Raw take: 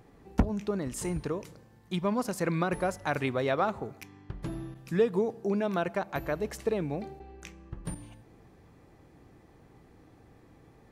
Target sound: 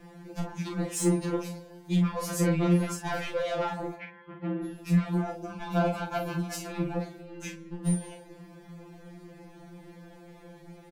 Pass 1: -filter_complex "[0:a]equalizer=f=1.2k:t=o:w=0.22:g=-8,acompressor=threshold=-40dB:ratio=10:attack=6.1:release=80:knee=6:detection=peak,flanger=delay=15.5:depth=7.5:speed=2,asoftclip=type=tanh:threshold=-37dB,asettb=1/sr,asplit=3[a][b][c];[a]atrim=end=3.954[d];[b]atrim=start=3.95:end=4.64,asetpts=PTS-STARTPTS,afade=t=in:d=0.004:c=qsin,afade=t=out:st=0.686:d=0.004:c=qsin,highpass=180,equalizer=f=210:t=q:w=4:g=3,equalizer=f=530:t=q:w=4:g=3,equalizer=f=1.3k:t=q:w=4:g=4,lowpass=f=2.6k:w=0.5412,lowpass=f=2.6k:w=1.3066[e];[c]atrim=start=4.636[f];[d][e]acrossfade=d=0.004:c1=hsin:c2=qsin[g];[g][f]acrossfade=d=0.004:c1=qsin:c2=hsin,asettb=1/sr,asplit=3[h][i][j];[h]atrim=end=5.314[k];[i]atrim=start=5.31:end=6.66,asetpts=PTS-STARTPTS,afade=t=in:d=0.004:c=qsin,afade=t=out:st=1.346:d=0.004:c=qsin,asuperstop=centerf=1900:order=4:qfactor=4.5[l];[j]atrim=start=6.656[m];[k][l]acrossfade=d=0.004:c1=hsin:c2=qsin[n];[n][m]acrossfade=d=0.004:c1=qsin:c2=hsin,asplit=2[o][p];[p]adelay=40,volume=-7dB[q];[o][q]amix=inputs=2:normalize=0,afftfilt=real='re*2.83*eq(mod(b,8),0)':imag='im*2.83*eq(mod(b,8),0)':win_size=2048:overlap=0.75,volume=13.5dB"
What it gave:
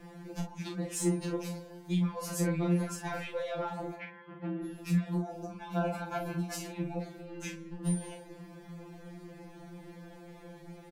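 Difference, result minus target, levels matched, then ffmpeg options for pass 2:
compressor: peak gain reduction +9 dB
-filter_complex "[0:a]equalizer=f=1.2k:t=o:w=0.22:g=-8,acompressor=threshold=-30dB:ratio=10:attack=6.1:release=80:knee=6:detection=peak,flanger=delay=15.5:depth=7.5:speed=2,asoftclip=type=tanh:threshold=-37dB,asettb=1/sr,asplit=3[a][b][c];[a]atrim=end=3.954[d];[b]atrim=start=3.95:end=4.64,asetpts=PTS-STARTPTS,afade=t=in:d=0.004:c=qsin,afade=t=out:st=0.686:d=0.004:c=qsin,highpass=180,equalizer=f=210:t=q:w=4:g=3,equalizer=f=530:t=q:w=4:g=3,equalizer=f=1.3k:t=q:w=4:g=4,lowpass=f=2.6k:w=0.5412,lowpass=f=2.6k:w=1.3066[e];[c]atrim=start=4.636[f];[d][e]acrossfade=d=0.004:c1=hsin:c2=qsin[g];[g][f]acrossfade=d=0.004:c1=qsin:c2=hsin,asettb=1/sr,asplit=3[h][i][j];[h]atrim=end=5.314[k];[i]atrim=start=5.31:end=6.66,asetpts=PTS-STARTPTS,afade=t=in:d=0.004:c=qsin,afade=t=out:st=1.346:d=0.004:c=qsin,asuperstop=centerf=1900:order=4:qfactor=4.5[l];[j]atrim=start=6.656[m];[k][l]acrossfade=d=0.004:c1=hsin:c2=qsin[n];[n][m]acrossfade=d=0.004:c1=qsin:c2=hsin,asplit=2[o][p];[p]adelay=40,volume=-7dB[q];[o][q]amix=inputs=2:normalize=0,afftfilt=real='re*2.83*eq(mod(b,8),0)':imag='im*2.83*eq(mod(b,8),0)':win_size=2048:overlap=0.75,volume=13.5dB"

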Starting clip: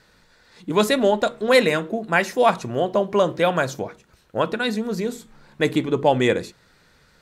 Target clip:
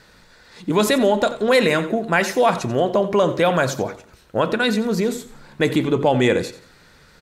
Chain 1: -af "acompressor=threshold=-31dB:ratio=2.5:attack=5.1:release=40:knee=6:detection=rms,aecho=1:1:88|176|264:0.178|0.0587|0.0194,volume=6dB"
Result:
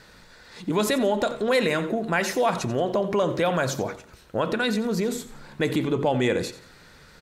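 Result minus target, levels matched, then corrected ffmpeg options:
compressor: peak gain reduction +6 dB
-af "acompressor=threshold=-21dB:ratio=2.5:attack=5.1:release=40:knee=6:detection=rms,aecho=1:1:88|176|264:0.178|0.0587|0.0194,volume=6dB"

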